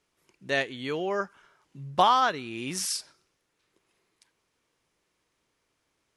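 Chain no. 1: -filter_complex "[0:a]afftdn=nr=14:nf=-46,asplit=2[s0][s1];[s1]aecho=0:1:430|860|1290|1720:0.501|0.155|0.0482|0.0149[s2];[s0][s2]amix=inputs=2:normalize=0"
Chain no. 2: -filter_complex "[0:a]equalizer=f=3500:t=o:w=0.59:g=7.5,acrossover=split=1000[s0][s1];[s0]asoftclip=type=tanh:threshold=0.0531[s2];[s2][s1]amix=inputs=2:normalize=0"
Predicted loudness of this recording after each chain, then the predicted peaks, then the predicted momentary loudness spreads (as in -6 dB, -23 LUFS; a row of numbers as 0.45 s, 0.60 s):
-27.5 LUFS, -27.5 LUFS; -8.5 dBFS, -10.0 dBFS; 19 LU, 13 LU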